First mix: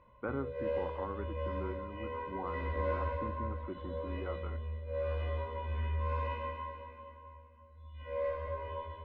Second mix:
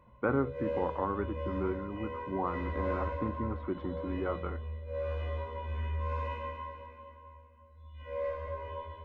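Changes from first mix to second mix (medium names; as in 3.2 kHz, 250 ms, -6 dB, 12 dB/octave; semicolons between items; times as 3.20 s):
speech +8.0 dB; master: remove low-pass 5.1 kHz 24 dB/octave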